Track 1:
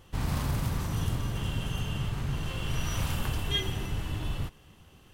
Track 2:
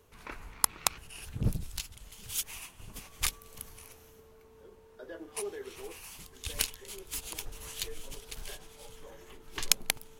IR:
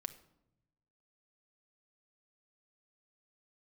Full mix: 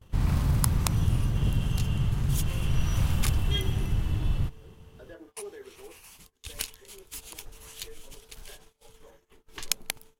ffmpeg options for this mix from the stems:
-filter_complex "[0:a]lowshelf=f=240:g=10,volume=-4.5dB,asplit=2[a][b];[b]volume=-11dB[c];[1:a]volume=-3dB[d];[2:a]atrim=start_sample=2205[e];[c][e]afir=irnorm=-1:irlink=0[f];[a][d][f]amix=inputs=3:normalize=0,agate=range=-22dB:threshold=-51dB:ratio=16:detection=peak"

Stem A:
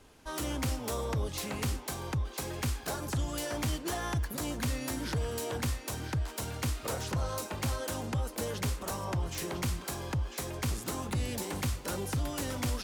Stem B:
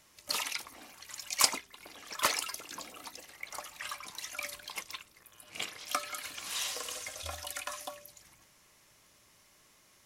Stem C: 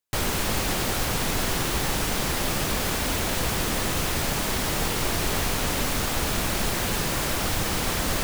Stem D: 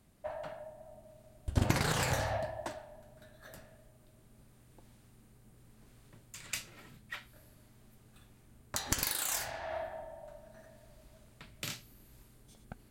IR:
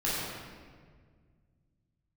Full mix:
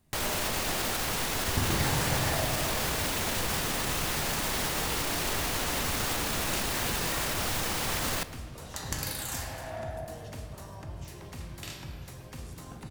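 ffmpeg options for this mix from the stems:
-filter_complex "[0:a]adelay=1700,volume=-14.5dB,asplit=2[a][b];[b]volume=-9dB[c];[1:a]adelay=2100,volume=-20dB[d];[2:a]lowshelf=f=320:g=-6.5,alimiter=limit=-24dB:level=0:latency=1,volume=2dB,asplit=2[e][f];[f]volume=-21.5dB[g];[3:a]volume=-6dB,asplit=2[h][i];[i]volume=-7dB[j];[4:a]atrim=start_sample=2205[k];[c][g][j]amix=inputs=3:normalize=0[l];[l][k]afir=irnorm=-1:irlink=0[m];[a][d][e][h][m]amix=inputs=5:normalize=0"

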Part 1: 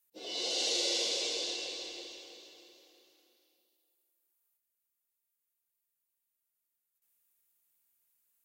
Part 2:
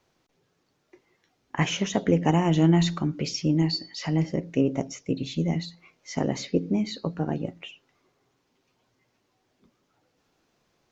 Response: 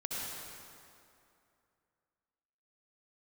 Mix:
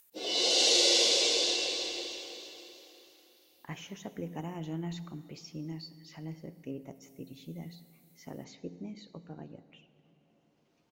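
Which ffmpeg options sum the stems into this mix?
-filter_complex "[0:a]acontrast=79,volume=0.5dB[a];[1:a]adelay=2100,volume=-18.5dB,asplit=2[b][c];[c]volume=-16dB[d];[2:a]atrim=start_sample=2205[e];[d][e]afir=irnorm=-1:irlink=0[f];[a][b][f]amix=inputs=3:normalize=0,acompressor=mode=upward:threshold=-59dB:ratio=2.5"

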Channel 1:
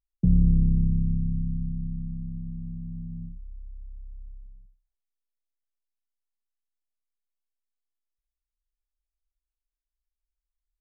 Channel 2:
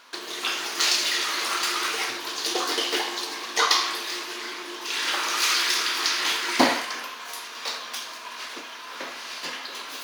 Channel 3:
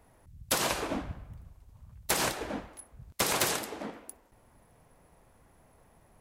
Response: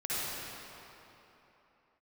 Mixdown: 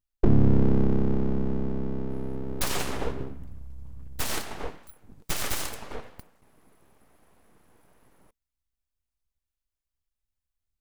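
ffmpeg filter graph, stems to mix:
-filter_complex "[0:a]equalizer=f=100:w=3.7:g=-4.5,volume=2dB[a];[2:a]adelay=2100,volume=1dB[b];[a][b]amix=inputs=2:normalize=0,equalizer=f=230:t=o:w=0.28:g=12.5,aeval=exprs='abs(val(0))':c=same"

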